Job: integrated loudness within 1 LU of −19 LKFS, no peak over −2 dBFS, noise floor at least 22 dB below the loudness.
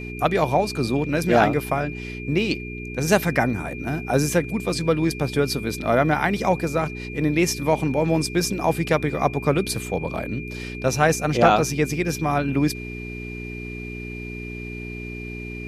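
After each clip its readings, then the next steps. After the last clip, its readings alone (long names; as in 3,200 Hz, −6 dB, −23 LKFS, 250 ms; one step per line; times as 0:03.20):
mains hum 60 Hz; hum harmonics up to 420 Hz; level of the hum −32 dBFS; interfering tone 2,400 Hz; level of the tone −36 dBFS; integrated loudness −23.0 LKFS; sample peak −3.5 dBFS; target loudness −19.0 LKFS
→ hum removal 60 Hz, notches 7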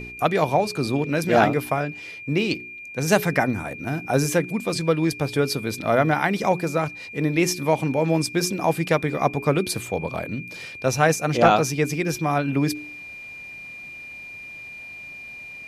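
mains hum none found; interfering tone 2,400 Hz; level of the tone −36 dBFS
→ notch filter 2,400 Hz, Q 30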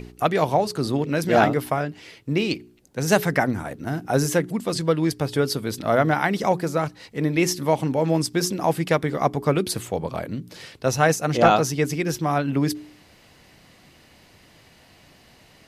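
interfering tone none found; integrated loudness −23.0 LKFS; sample peak −4.5 dBFS; target loudness −19.0 LKFS
→ level +4 dB
brickwall limiter −2 dBFS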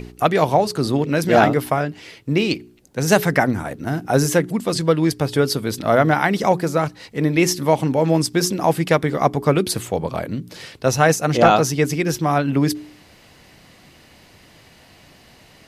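integrated loudness −19.0 LKFS; sample peak −2.0 dBFS; background noise floor −50 dBFS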